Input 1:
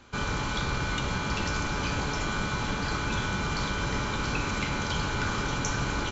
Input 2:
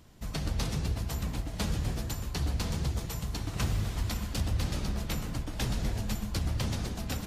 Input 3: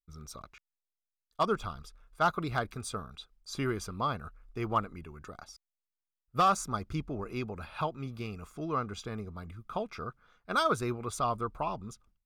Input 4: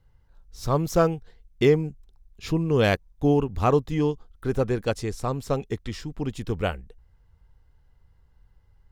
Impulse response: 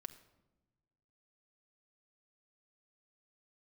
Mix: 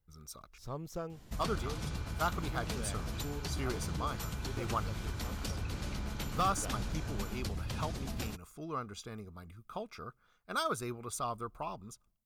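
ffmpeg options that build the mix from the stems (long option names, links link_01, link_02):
-filter_complex "[0:a]adelay=1300,volume=-19dB[link_01];[1:a]adelay=1100,volume=0dB[link_02];[2:a]highshelf=frequency=6500:gain=12,volume=-7dB,asplit=2[link_03][link_04];[link_04]volume=-21.5dB[link_05];[3:a]volume=-16.5dB[link_06];[link_02][link_06]amix=inputs=2:normalize=0,acompressor=threshold=-35dB:ratio=6,volume=0dB[link_07];[4:a]atrim=start_sample=2205[link_08];[link_05][link_08]afir=irnorm=-1:irlink=0[link_09];[link_01][link_03][link_07][link_09]amix=inputs=4:normalize=0"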